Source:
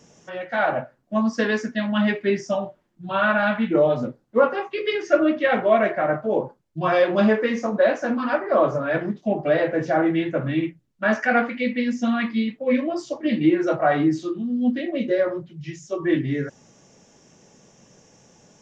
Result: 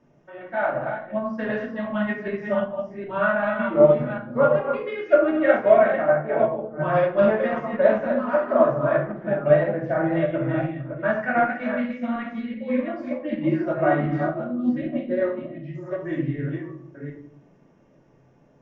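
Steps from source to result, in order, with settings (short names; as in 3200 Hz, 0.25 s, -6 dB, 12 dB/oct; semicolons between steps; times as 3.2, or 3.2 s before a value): reverse delay 0.38 s, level -4.5 dB; LPF 1800 Hz 12 dB/oct; shoebox room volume 910 m³, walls furnished, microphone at 2.7 m; dynamic EQ 310 Hz, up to -7 dB, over -27 dBFS, Q 1.4; upward expander 1.5:1, over -25 dBFS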